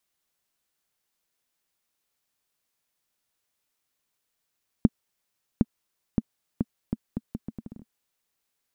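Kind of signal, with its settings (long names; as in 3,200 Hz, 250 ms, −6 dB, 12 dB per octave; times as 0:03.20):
bouncing ball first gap 0.76 s, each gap 0.75, 223 Hz, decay 37 ms −5 dBFS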